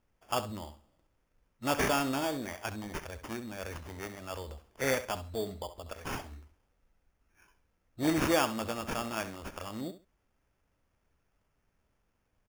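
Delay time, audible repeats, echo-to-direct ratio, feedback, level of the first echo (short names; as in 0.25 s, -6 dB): 67 ms, 2, -13.0 dB, 20%, -13.0 dB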